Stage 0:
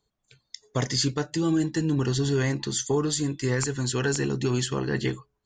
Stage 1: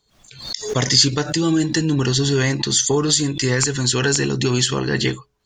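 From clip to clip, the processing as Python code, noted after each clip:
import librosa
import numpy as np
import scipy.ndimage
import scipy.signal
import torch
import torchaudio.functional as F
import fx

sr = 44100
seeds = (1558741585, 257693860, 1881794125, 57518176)

y = fx.peak_eq(x, sr, hz=4400.0, db=7.0, octaves=2.2)
y = fx.pre_swell(y, sr, db_per_s=92.0)
y = y * librosa.db_to_amplitude(5.5)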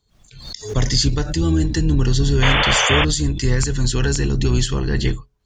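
y = fx.octave_divider(x, sr, octaves=2, level_db=-2.0)
y = fx.low_shelf(y, sr, hz=180.0, db=11.0)
y = fx.spec_paint(y, sr, seeds[0], shape='noise', start_s=2.42, length_s=0.63, low_hz=410.0, high_hz=3600.0, level_db=-12.0)
y = y * librosa.db_to_amplitude(-5.5)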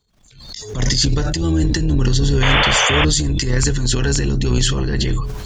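y = fx.transient(x, sr, attack_db=-10, sustain_db=8)
y = fx.sustainer(y, sr, db_per_s=44.0)
y = y * librosa.db_to_amplitude(1.0)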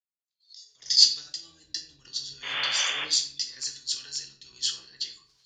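y = fx.bandpass_q(x, sr, hz=4800.0, q=2.9)
y = fx.room_shoebox(y, sr, seeds[1], volume_m3=140.0, walls='mixed', distance_m=0.67)
y = fx.band_widen(y, sr, depth_pct=100)
y = y * librosa.db_to_amplitude(-5.0)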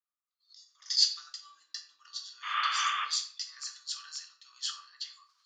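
y = fx.highpass_res(x, sr, hz=1200.0, q=13.0)
y = y * librosa.db_to_amplitude(-8.0)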